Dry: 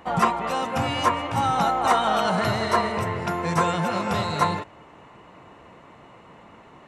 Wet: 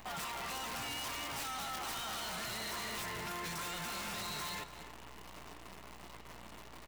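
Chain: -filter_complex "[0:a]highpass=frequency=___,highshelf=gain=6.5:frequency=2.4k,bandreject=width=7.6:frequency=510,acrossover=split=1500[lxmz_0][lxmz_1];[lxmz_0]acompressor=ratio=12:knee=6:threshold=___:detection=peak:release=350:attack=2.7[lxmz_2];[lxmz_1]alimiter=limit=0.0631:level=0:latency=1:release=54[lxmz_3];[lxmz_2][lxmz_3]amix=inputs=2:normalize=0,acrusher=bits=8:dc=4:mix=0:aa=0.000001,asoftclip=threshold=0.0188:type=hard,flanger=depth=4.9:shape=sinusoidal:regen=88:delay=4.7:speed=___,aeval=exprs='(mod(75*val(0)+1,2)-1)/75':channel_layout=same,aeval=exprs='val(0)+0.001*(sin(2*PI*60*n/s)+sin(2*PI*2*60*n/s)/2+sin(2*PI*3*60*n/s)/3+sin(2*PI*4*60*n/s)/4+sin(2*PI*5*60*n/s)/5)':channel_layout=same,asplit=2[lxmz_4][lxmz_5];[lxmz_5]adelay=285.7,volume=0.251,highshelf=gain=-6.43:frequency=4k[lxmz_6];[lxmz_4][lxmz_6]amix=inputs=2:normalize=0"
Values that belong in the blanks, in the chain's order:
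120, 0.0282, 0.68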